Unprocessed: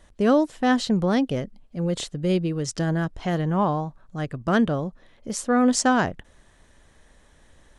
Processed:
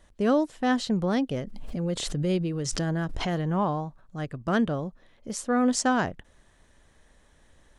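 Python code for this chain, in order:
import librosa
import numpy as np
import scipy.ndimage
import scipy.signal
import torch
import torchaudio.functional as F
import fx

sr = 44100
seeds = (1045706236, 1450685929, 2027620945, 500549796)

y = fx.pre_swell(x, sr, db_per_s=30.0, at=(1.42, 4.02))
y = y * librosa.db_to_amplitude(-4.0)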